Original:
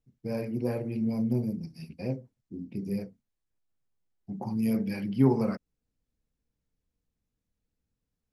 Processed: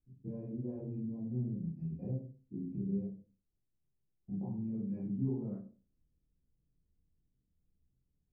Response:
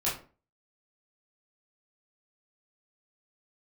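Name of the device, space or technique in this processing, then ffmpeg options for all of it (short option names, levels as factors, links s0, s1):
television next door: -filter_complex "[0:a]acompressor=threshold=0.00891:ratio=3,lowpass=390[s0];[1:a]atrim=start_sample=2205[s1];[s0][s1]afir=irnorm=-1:irlink=0,volume=0.596"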